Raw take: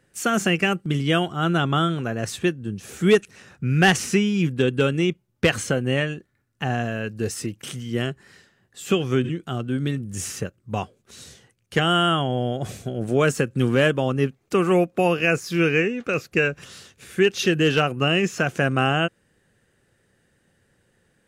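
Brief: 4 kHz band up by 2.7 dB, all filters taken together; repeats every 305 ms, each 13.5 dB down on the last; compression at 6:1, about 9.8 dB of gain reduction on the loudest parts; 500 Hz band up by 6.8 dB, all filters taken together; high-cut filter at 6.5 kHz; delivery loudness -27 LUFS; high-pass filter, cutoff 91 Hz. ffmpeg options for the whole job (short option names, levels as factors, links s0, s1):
-af "highpass=91,lowpass=6500,equalizer=f=500:t=o:g=8.5,equalizer=f=4000:t=o:g=4.5,acompressor=threshold=0.178:ratio=6,aecho=1:1:305|610:0.211|0.0444,volume=0.562"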